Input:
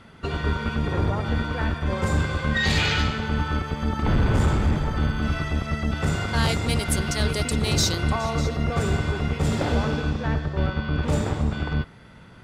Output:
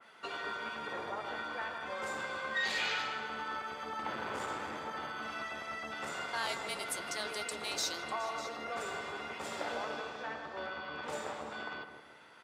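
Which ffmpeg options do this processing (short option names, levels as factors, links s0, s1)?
-filter_complex "[0:a]highpass=640,asplit=2[s0][s1];[s1]acompressor=threshold=0.0141:ratio=6,volume=0.841[s2];[s0][s2]amix=inputs=2:normalize=0,flanger=delay=9:depth=1.2:regen=-63:speed=0.99:shape=sinusoidal,asettb=1/sr,asplit=3[s3][s4][s5];[s3]atrim=end=6.434[s6];[s4]atrim=start=6.43:end=7.02,asetpts=PTS-STARTPTS,afade=t=in:d=0.004:c=qsin,afade=t=out:st=0.586:d=0.004:c=qsin,afreqshift=-30[s7];[s5]atrim=start=7.016[s8];[s6][s7]acrossfade=d=0.004:c1=hsin:c2=qsin[s9];[s9][s8]acrossfade=d=0.004:c1=qsin:c2=hsin,asplit=2[s10][s11];[s11]adelay=159,lowpass=f=930:p=1,volume=0.531,asplit=2[s12][s13];[s13]adelay=159,lowpass=f=930:p=1,volume=0.54,asplit=2[s14][s15];[s15]adelay=159,lowpass=f=930:p=1,volume=0.54,asplit=2[s16][s17];[s17]adelay=159,lowpass=f=930:p=1,volume=0.54,asplit=2[s18][s19];[s19]adelay=159,lowpass=f=930:p=1,volume=0.54,asplit=2[s20][s21];[s21]adelay=159,lowpass=f=930:p=1,volume=0.54,asplit=2[s22][s23];[s23]adelay=159,lowpass=f=930:p=1,volume=0.54[s24];[s12][s14][s16][s18][s20][s22][s24]amix=inputs=7:normalize=0[s25];[s10][s25]amix=inputs=2:normalize=0,adynamicequalizer=threshold=0.00794:dfrequency=2300:dqfactor=0.7:tfrequency=2300:tqfactor=0.7:attack=5:release=100:ratio=0.375:range=1.5:mode=cutabove:tftype=highshelf,volume=0.531"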